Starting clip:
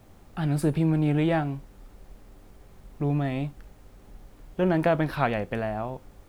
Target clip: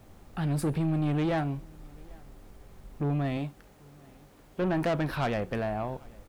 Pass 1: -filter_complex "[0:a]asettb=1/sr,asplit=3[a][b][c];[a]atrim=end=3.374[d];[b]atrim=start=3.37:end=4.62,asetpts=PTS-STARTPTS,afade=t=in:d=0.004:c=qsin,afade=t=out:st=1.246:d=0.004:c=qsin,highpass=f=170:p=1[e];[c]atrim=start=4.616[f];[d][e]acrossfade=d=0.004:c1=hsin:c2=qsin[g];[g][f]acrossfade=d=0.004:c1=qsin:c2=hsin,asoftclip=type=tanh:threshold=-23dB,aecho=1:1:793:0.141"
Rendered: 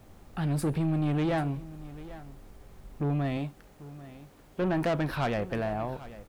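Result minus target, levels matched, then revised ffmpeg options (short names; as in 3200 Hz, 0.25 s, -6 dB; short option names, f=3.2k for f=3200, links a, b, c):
echo-to-direct +9.5 dB
-filter_complex "[0:a]asettb=1/sr,asplit=3[a][b][c];[a]atrim=end=3.374[d];[b]atrim=start=3.37:end=4.62,asetpts=PTS-STARTPTS,afade=t=in:d=0.004:c=qsin,afade=t=out:st=1.246:d=0.004:c=qsin,highpass=f=170:p=1[e];[c]atrim=start=4.616[f];[d][e]acrossfade=d=0.004:c1=hsin:c2=qsin[g];[g][f]acrossfade=d=0.004:c1=qsin:c2=hsin,asoftclip=type=tanh:threshold=-23dB,aecho=1:1:793:0.0473"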